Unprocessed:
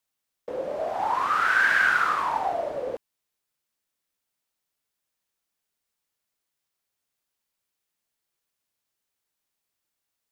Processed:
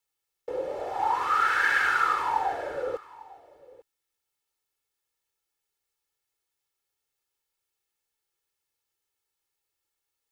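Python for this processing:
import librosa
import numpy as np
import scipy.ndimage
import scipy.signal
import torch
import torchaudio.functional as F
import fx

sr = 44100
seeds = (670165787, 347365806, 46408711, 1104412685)

y = x + 0.72 * np.pad(x, (int(2.3 * sr / 1000.0), 0))[:len(x)]
y = y + 10.0 ** (-20.5 / 20.0) * np.pad(y, (int(850 * sr / 1000.0), 0))[:len(y)]
y = y * librosa.db_to_amplitude(-3.0)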